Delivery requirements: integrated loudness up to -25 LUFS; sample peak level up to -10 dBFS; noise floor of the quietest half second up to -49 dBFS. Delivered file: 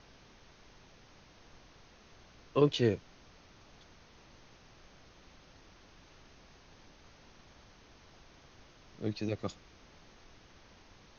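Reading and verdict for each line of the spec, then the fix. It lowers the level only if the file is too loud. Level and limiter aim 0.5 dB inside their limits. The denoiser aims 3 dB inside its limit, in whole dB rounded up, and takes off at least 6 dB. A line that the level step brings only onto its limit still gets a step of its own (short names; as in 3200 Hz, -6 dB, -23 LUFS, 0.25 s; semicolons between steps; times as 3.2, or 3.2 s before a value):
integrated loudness -33.0 LUFS: OK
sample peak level -13.0 dBFS: OK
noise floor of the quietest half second -59 dBFS: OK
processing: none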